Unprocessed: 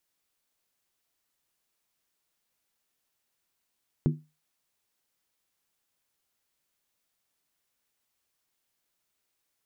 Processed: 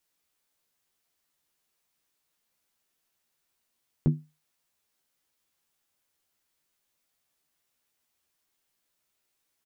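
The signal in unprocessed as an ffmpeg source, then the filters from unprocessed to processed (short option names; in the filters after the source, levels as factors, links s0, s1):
-f lavfi -i "aevalsrc='0.126*pow(10,-3*t/0.27)*sin(2*PI*153*t)+0.0708*pow(10,-3*t/0.214)*sin(2*PI*243.9*t)+0.0398*pow(10,-3*t/0.185)*sin(2*PI*326.8*t)+0.0224*pow(10,-3*t/0.178)*sin(2*PI*351.3*t)+0.0126*pow(10,-3*t/0.166)*sin(2*PI*405.9*t)':d=0.63:s=44100"
-filter_complex "[0:a]asplit=2[s0][s1];[s1]adelay=13,volume=0.562[s2];[s0][s2]amix=inputs=2:normalize=0"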